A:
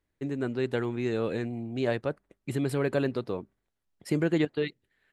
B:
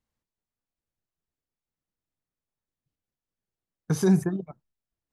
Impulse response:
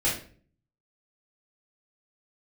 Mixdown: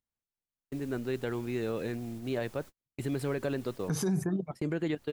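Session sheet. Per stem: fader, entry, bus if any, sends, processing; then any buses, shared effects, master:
-3.5 dB, 0.50 s, no send, dry
0.0 dB, 0.00 s, no send, upward compressor, threshold -25 dBFS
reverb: off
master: gate -40 dBFS, range -45 dB; limiter -22.5 dBFS, peak gain reduction 11 dB

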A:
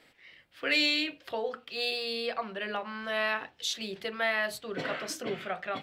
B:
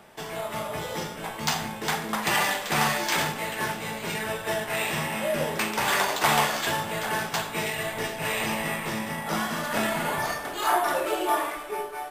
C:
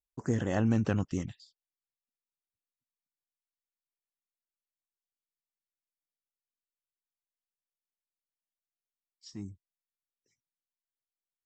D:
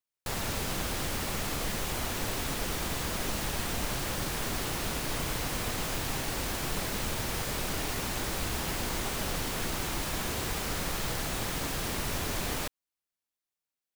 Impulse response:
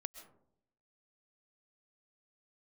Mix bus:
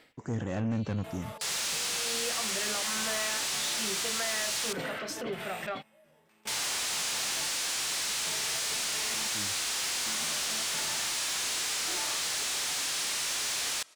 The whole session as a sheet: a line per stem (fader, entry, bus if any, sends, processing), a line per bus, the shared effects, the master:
+2.0 dB, 0.00 s, no send, limiter -22.5 dBFS, peak gain reduction 7.5 dB; compressor 3:1, threshold -36 dBFS, peak gain reduction 6.5 dB; auto duck -22 dB, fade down 0.25 s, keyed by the third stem
-14.5 dB, 0.70 s, no send, limiter -19 dBFS, peak gain reduction 10.5 dB; step gate "...xxx.x.xxx...." 133 bpm -24 dB
-2.5 dB, 0.00 s, no send, HPF 54 Hz
-4.0 dB, 1.15 s, muted 4.73–6.47, send -14 dB, weighting filter ITU-R 468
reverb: on, RT60 0.75 s, pre-delay 90 ms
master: soft clip -29.5 dBFS, distortion -12 dB; harmonic-percussive split harmonic +4 dB

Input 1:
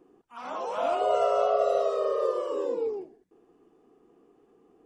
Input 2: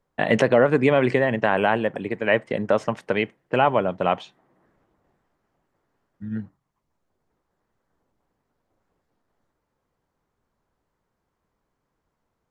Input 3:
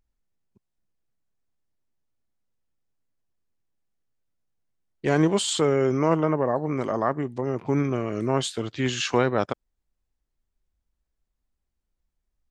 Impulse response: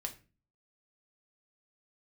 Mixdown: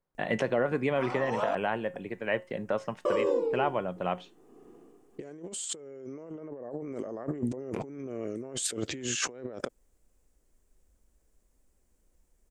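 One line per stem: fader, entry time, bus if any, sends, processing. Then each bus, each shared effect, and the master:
-4.5 dB, 0.65 s, muted 1.55–3.05, no send, low shelf 320 Hz +5 dB; tremolo triangle 1.3 Hz, depth 70%
-15.0 dB, 0.00 s, no send, resonator 180 Hz, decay 0.27 s, harmonics all, mix 50%
+0.5 dB, 0.15 s, no send, graphic EQ 125/250/500/1000/4000/8000 Hz -4/+3/+8/-7/-7/+9 dB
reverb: off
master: negative-ratio compressor -35 dBFS, ratio -1

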